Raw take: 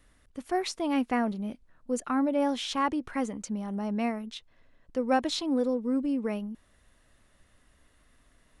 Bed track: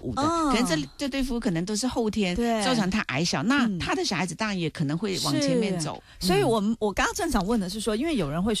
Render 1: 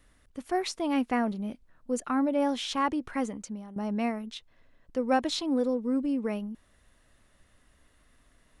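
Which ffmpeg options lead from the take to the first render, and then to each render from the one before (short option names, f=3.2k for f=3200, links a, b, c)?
-filter_complex "[0:a]asplit=2[a][b];[a]atrim=end=3.76,asetpts=PTS-STARTPTS,afade=t=out:st=3.27:d=0.49:silence=0.211349[c];[b]atrim=start=3.76,asetpts=PTS-STARTPTS,afade=t=in:d=0.004:c=hsin:silence=0.211349[d];[c][d]concat=n=2:v=0:a=1"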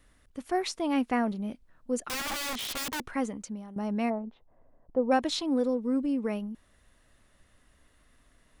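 -filter_complex "[0:a]asettb=1/sr,asplit=3[a][b][c];[a]atrim=end=2.094[d];[b]atrim=start=2.09:end=3.06,asetpts=PTS-STARTPTS,afade=t=in:d=0.004:c=qsin,afade=t=out:st=0.966:d=0.004:c=qsin,aeval=exprs='(mod(26.6*val(0)+1,2)-1)/26.6':c=same[e];[c]atrim=start=3.056[f];[d][e]acrossfade=d=0.004:c1=hsin:c2=qsin[g];[g][f]acrossfade=d=0.004:c1=qsin:c2=hsin,asplit=3[h][i][j];[h]afade=t=out:st=4.09:d=0.02[k];[i]lowpass=f=770:t=q:w=2.2,afade=t=in:st=4.09:d=0.02,afade=t=out:st=5.1:d=0.02[l];[j]afade=t=in:st=5.1:d=0.02[m];[k][l][m]amix=inputs=3:normalize=0"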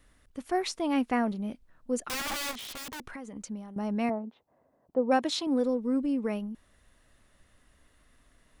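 -filter_complex "[0:a]asettb=1/sr,asplit=3[a][b][c];[a]atrim=end=2.514[d];[b]atrim=start=2.51:end=3.36,asetpts=PTS-STARTPTS,afade=t=in:d=0.004:c=qsin,afade=t=out:st=0.846:d=0.004:c=qsin,acompressor=threshold=-38dB:ratio=6:attack=3.2:release=140:knee=1:detection=peak[e];[c]atrim=start=3.356[f];[d][e]acrossfade=d=0.004:c1=hsin:c2=qsin[g];[g][f]acrossfade=d=0.004:c1=qsin:c2=hsin,asettb=1/sr,asplit=3[h][i][j];[h]atrim=end=4.094[k];[i]atrim=start=4.09:end=5.47,asetpts=PTS-STARTPTS,afade=t=in:d=0.004:c=qsin,afade=t=out:st=1.376:d=0.004:c=qsin,highpass=140[l];[j]atrim=start=5.466[m];[k][l]acrossfade=d=0.004:c1=hsin:c2=qsin[n];[n][m]acrossfade=d=0.004:c1=qsin:c2=hsin"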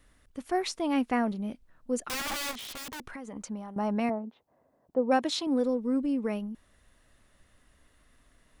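-filter_complex "[0:a]asettb=1/sr,asplit=3[a][b][c];[a]atrim=end=3.274[d];[b]atrim=start=3.27:end=4,asetpts=PTS-STARTPTS,afade=t=in:d=0.004:c=qsin,afade=t=out:st=0.726:d=0.004:c=qsin,equalizer=f=950:w=0.78:g=8[e];[c]atrim=start=3.996[f];[d][e]acrossfade=d=0.004:c1=hsin:c2=qsin[g];[g][f]acrossfade=d=0.004:c1=qsin:c2=hsin"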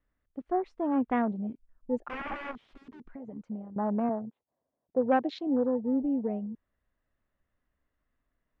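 -af "afwtdn=0.0178,lowpass=2.1k"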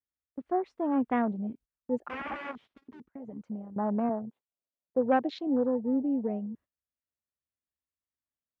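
-af "highpass=f=55:w=0.5412,highpass=f=55:w=1.3066,agate=range=-21dB:threshold=-52dB:ratio=16:detection=peak"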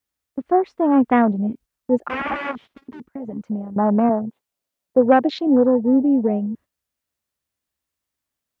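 -af "volume=12dB,alimiter=limit=-3dB:level=0:latency=1"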